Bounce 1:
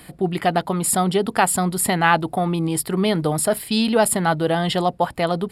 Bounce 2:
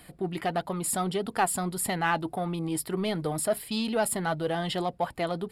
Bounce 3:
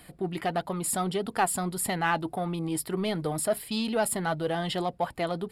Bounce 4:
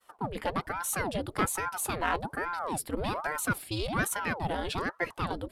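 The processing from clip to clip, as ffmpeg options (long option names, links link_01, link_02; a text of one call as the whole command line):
ffmpeg -i in.wav -filter_complex "[0:a]asplit=2[link_01][link_02];[link_02]asoftclip=type=tanh:threshold=-18.5dB,volume=-6dB[link_03];[link_01][link_03]amix=inputs=2:normalize=0,flanger=delay=1.2:depth=2.5:regen=69:speed=1.6:shape=triangular,volume=-7dB" out.wav
ffmpeg -i in.wav -af anull out.wav
ffmpeg -i in.wav -af "agate=range=-33dB:threshold=-45dB:ratio=3:detection=peak,aeval=exprs='val(0)*sin(2*PI*660*n/s+660*0.85/1.2*sin(2*PI*1.2*n/s))':channel_layout=same" out.wav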